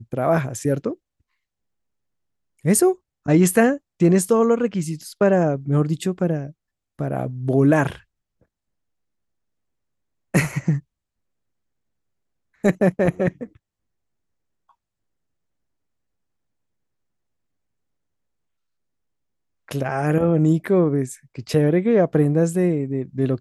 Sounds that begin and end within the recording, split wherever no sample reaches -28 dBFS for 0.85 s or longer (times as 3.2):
2.65–7.95
10.34–10.79
12.64–13.44